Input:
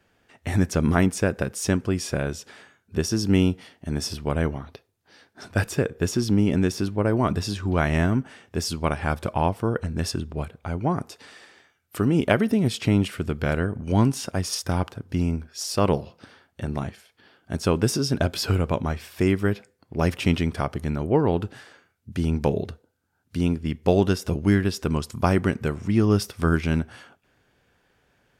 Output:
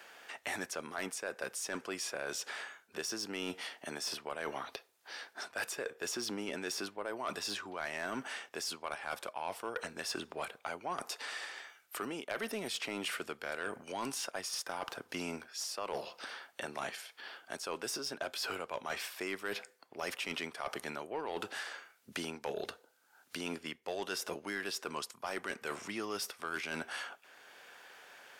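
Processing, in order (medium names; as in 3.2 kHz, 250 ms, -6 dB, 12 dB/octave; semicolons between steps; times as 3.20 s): high-pass 680 Hz 12 dB/octave; reverse; compression 10:1, threshold -37 dBFS, peak gain reduction 20.5 dB; reverse; saturation -31 dBFS, distortion -16 dB; three bands compressed up and down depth 40%; trim +4 dB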